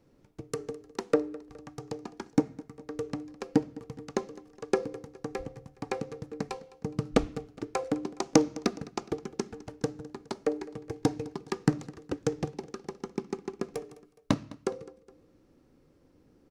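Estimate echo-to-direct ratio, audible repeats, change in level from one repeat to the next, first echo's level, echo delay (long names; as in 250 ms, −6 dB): −19.0 dB, 2, −5.5 dB, −20.0 dB, 208 ms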